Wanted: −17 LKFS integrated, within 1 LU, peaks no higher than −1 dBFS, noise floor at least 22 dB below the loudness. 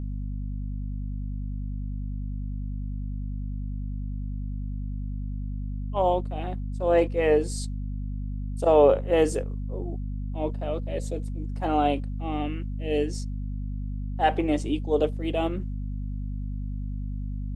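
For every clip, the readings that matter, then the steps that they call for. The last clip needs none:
mains hum 50 Hz; hum harmonics up to 250 Hz; level of the hum −29 dBFS; integrated loudness −28.5 LKFS; sample peak −8.0 dBFS; target loudness −17.0 LKFS
→ mains-hum notches 50/100/150/200/250 Hz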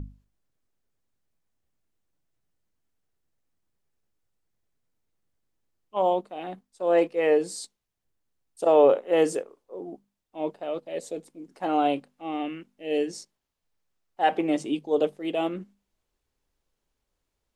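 mains hum none found; integrated loudness −26.0 LKFS; sample peak −8.0 dBFS; target loudness −17.0 LKFS
→ level +9 dB
brickwall limiter −1 dBFS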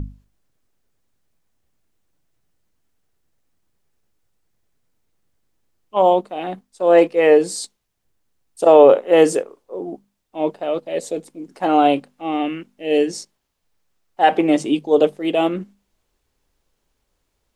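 integrated loudness −17.0 LKFS; sample peak −1.0 dBFS; background noise floor −73 dBFS

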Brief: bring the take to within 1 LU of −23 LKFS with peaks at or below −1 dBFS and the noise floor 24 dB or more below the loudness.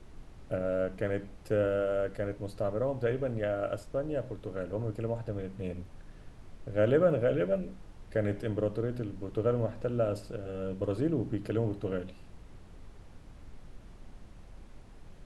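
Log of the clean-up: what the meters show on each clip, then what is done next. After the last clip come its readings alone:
background noise floor −52 dBFS; target noise floor −57 dBFS; integrated loudness −32.5 LKFS; sample peak −14.5 dBFS; target loudness −23.0 LKFS
→ noise reduction from a noise print 6 dB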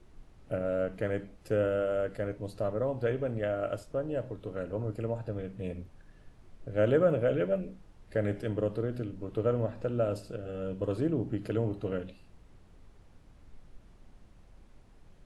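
background noise floor −57 dBFS; integrated loudness −32.5 LKFS; sample peak −14.5 dBFS; target loudness −23.0 LKFS
→ level +9.5 dB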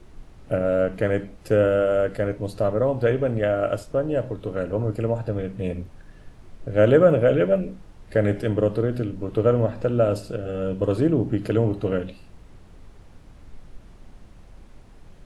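integrated loudness −23.0 LKFS; sample peak −5.0 dBFS; background noise floor −48 dBFS

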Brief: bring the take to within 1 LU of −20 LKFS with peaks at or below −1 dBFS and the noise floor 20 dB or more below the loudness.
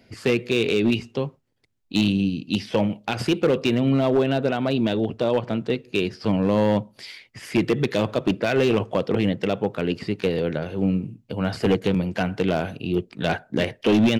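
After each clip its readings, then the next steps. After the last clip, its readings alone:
share of clipped samples 1.3%; peaks flattened at −13.0 dBFS; integrated loudness −23.5 LKFS; sample peak −13.0 dBFS; target loudness −20.0 LKFS
→ clipped peaks rebuilt −13 dBFS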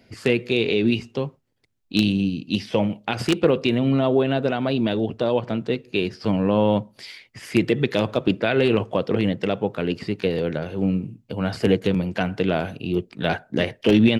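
share of clipped samples 0.0%; integrated loudness −22.5 LKFS; sample peak −4.0 dBFS; target loudness −20.0 LKFS
→ level +2.5 dB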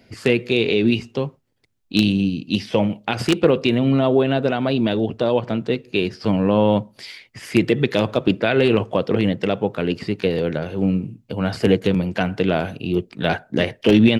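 integrated loudness −20.5 LKFS; sample peak −1.5 dBFS; background noise floor −59 dBFS

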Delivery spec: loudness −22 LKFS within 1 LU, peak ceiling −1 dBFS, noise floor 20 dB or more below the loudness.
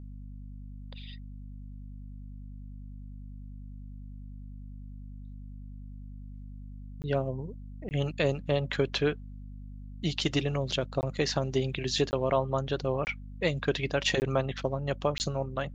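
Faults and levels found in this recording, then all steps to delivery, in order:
number of dropouts 7; longest dropout 19 ms; mains hum 50 Hz; hum harmonics up to 250 Hz; level of the hum −40 dBFS; integrated loudness −30.5 LKFS; sample peak −13.0 dBFS; target loudness −22.0 LKFS
→ repair the gap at 0:07.02/0:07.89/0:11.01/0:12.11/0:13.05/0:14.20/0:15.18, 19 ms
mains-hum notches 50/100/150/200/250 Hz
level +8.5 dB

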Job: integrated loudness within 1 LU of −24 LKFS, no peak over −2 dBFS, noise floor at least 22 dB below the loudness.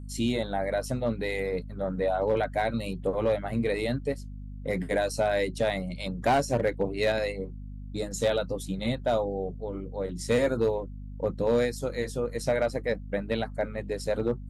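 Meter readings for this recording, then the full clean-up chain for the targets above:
share of clipped samples 0.4%; peaks flattened at −17.5 dBFS; mains hum 50 Hz; hum harmonics up to 250 Hz; level of the hum −37 dBFS; integrated loudness −29.0 LKFS; sample peak −17.5 dBFS; target loudness −24.0 LKFS
→ clipped peaks rebuilt −17.5 dBFS
mains-hum notches 50/100/150/200/250 Hz
level +5 dB

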